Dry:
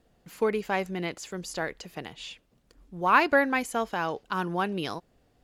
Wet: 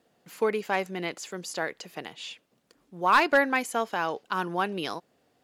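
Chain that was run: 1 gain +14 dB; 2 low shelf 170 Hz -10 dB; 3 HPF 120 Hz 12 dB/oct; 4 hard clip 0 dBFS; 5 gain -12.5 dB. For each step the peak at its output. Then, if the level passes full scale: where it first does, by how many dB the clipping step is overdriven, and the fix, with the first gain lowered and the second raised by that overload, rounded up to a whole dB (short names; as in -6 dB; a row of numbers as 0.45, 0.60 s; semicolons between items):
+6.0, +6.0, +6.5, 0.0, -12.5 dBFS; step 1, 6.5 dB; step 1 +7 dB, step 5 -5.5 dB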